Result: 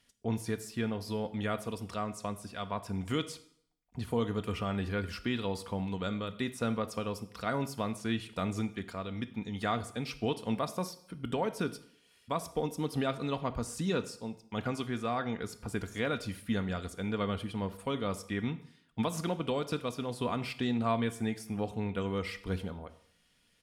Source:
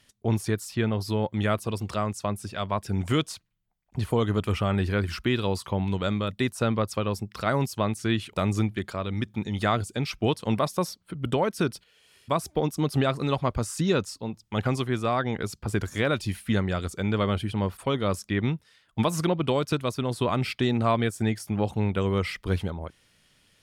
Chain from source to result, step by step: comb 4.2 ms, depth 36%; reverberation RT60 0.65 s, pre-delay 7 ms, DRR 11.5 dB; trim -8 dB

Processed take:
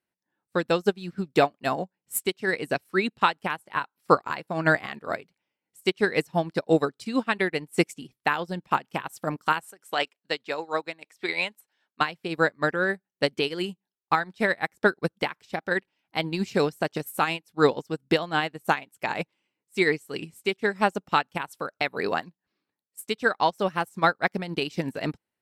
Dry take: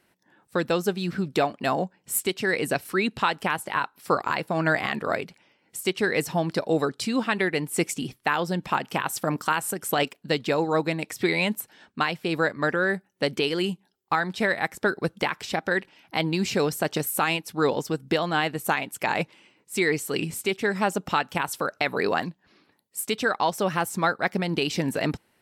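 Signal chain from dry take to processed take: 9.65–12.01 s: frequency weighting A; upward expansion 2.5:1, over -36 dBFS; trim +5.5 dB

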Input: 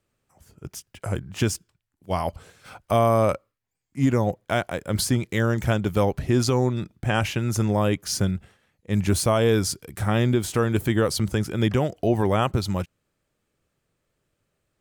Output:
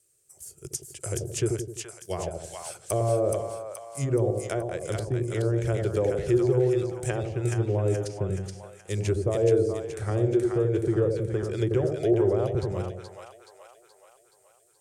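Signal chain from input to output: RIAA curve recording; low-pass that closes with the level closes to 780 Hz, closed at -20.5 dBFS; FFT filter 140 Hz 0 dB, 250 Hz -22 dB, 360 Hz 0 dB, 900 Hz -19 dB, 1.6 kHz -15 dB, 3.6 kHz -13 dB, 8.9 kHz +2 dB, 14 kHz -11 dB; on a send: two-band feedback delay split 700 Hz, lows 85 ms, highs 425 ms, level -3.5 dB; on the sum: trim +7 dB

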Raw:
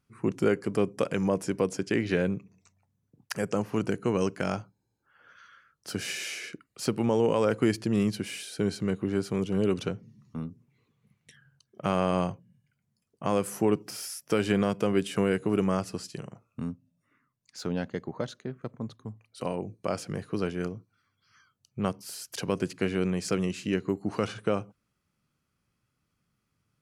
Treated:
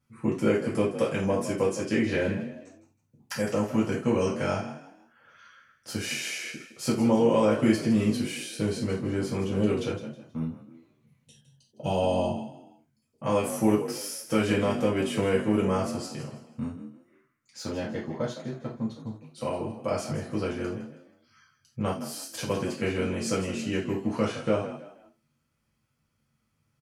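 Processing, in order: frequency-shifting echo 160 ms, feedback 33%, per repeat +43 Hz, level -12.5 dB; time-frequency box 11.24–12.79 s, 1–2.5 kHz -20 dB; gated-style reverb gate 120 ms falling, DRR -6.5 dB; trim -5.5 dB

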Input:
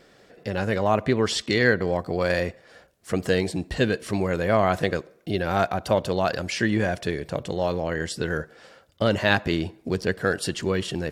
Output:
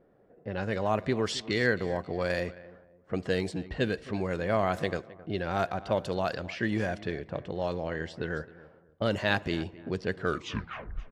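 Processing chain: tape stop on the ending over 0.92 s; feedback delay 265 ms, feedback 33%, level -18.5 dB; level-controlled noise filter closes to 790 Hz, open at -18 dBFS; trim -6.5 dB

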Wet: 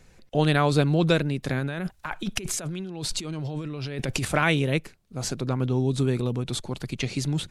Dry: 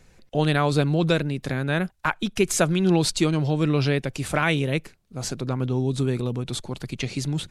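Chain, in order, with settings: 1.59–4.25 s: compressor with a negative ratio -31 dBFS, ratio -1

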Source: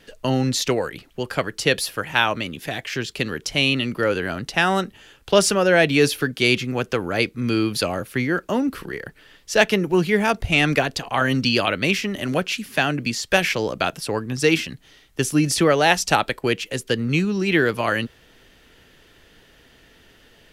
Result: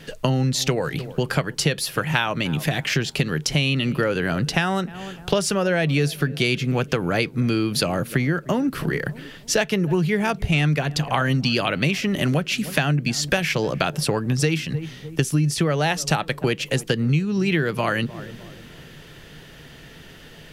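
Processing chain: peaking EQ 150 Hz +13.5 dB 0.4 oct; filtered feedback delay 302 ms, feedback 46%, low-pass 980 Hz, level -22 dB; compression 6:1, threshold -26 dBFS, peak gain reduction 17 dB; trim +7.5 dB

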